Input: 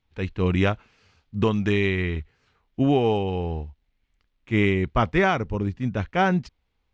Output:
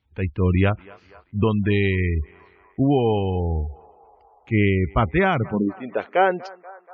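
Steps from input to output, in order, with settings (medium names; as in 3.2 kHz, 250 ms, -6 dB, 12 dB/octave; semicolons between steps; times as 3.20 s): in parallel at -11 dB: saturation -25 dBFS, distortion -7 dB; on the sum: high-pass sweep 61 Hz -> 450 Hz, 5.19–5.84 s; band-passed feedback delay 240 ms, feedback 82%, band-pass 990 Hz, level -19.5 dB; spectral gate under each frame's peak -30 dB strong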